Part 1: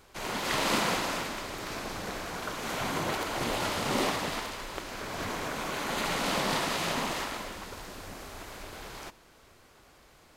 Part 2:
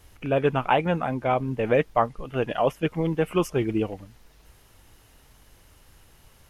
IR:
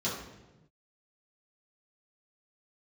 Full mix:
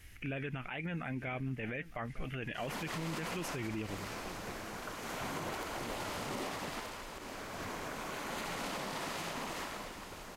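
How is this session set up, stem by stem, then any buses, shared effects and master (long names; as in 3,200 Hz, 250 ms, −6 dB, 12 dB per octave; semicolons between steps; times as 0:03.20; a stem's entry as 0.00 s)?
−7.0 dB, 2.40 s, no send, echo send −14 dB, no processing
−3.5 dB, 0.00 s, no send, echo send −22.5 dB, graphic EQ with 10 bands 500 Hz −7 dB, 1,000 Hz −11 dB, 2,000 Hz +11 dB; speech leveller 0.5 s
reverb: not used
echo: single-tap delay 909 ms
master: parametric band 3,800 Hz −3 dB 0.66 octaves; brickwall limiter −30 dBFS, peak gain reduction 15 dB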